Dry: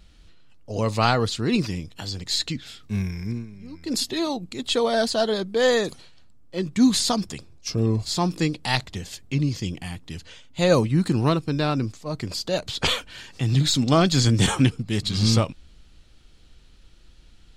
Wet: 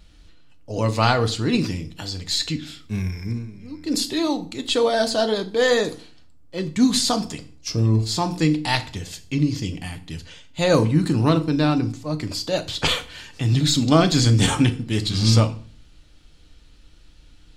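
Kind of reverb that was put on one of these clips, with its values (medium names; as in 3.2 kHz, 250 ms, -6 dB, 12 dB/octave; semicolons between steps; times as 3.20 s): FDN reverb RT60 0.43 s, low-frequency decay 1.3×, high-frequency decay 0.9×, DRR 7.5 dB; trim +1 dB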